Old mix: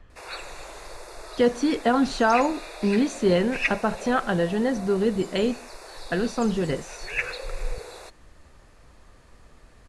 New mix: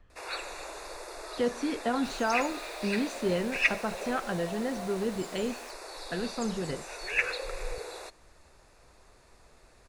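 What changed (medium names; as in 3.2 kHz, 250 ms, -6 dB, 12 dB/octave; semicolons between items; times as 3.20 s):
speech -8.5 dB; second sound: unmuted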